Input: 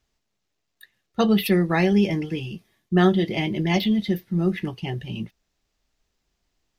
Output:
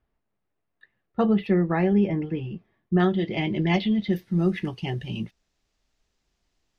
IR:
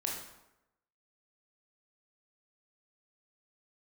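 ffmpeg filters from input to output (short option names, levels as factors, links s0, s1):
-af "asetnsamples=n=441:p=0,asendcmd='3 lowpass f 3500;4.13 lowpass f 9700',lowpass=1600,alimiter=limit=0.251:level=0:latency=1:release=485"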